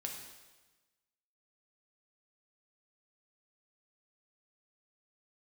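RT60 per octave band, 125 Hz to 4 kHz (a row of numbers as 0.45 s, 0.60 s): 1.3 s, 1.3 s, 1.2 s, 1.2 s, 1.2 s, 1.2 s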